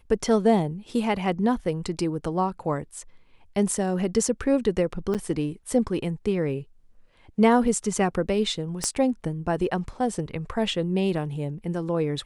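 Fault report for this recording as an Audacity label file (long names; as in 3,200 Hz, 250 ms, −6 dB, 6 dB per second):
5.140000	5.150000	drop-out 7.9 ms
8.840000	8.840000	click −12 dBFS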